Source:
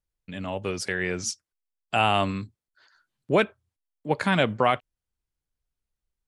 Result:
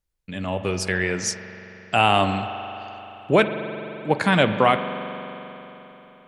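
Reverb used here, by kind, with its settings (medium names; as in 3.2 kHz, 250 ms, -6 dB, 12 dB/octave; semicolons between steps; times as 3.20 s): spring tank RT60 3.7 s, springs 43 ms, chirp 25 ms, DRR 8 dB; trim +4 dB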